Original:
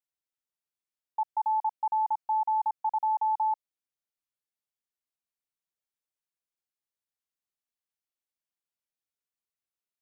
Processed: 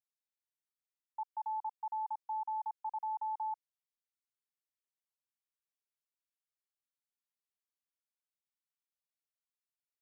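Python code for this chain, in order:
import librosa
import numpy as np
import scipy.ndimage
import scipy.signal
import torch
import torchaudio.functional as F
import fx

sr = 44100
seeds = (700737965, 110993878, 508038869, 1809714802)

y = scipy.signal.sosfilt(scipy.signal.butter(4, 840.0, 'highpass', fs=sr, output='sos'), x)
y = y * librosa.db_to_amplitude(-8.0)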